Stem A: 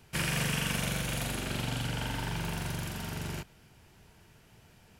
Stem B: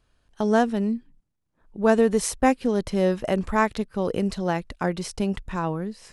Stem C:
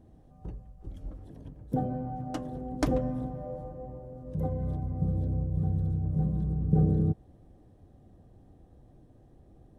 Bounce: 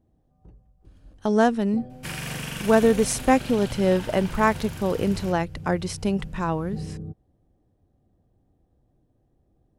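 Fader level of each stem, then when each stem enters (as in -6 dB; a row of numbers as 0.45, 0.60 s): -2.0, +1.0, -10.0 dB; 1.90, 0.85, 0.00 s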